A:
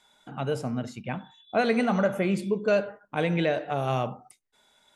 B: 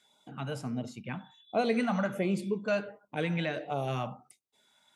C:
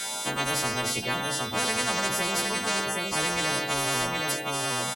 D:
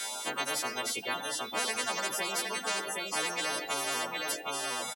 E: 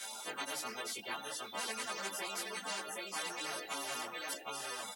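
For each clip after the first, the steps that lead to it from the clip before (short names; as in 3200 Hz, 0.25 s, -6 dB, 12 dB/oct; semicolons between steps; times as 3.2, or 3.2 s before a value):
HPF 96 Hz; LFO notch sine 1.4 Hz 380–1800 Hz; gain -3.5 dB
frequency quantiser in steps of 2 st; echo 0.766 s -16 dB; spectral compressor 10:1; gain +2 dB
HPF 300 Hz 12 dB/oct; reverb removal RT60 0.69 s; gain -3.5 dB
ensemble effect; gain -4.5 dB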